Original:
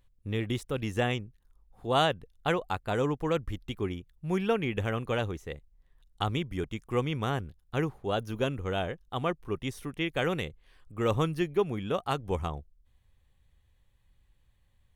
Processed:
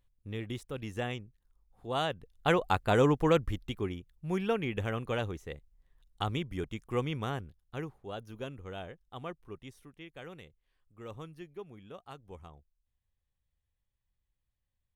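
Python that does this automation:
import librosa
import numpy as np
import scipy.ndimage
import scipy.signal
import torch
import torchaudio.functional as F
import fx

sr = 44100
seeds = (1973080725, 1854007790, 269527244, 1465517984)

y = fx.gain(x, sr, db=fx.line((2.03, -7.0), (2.65, 4.0), (3.27, 4.0), (3.92, -3.0), (7.1, -3.0), (8.01, -11.0), (9.42, -11.0), (10.0, -17.5)))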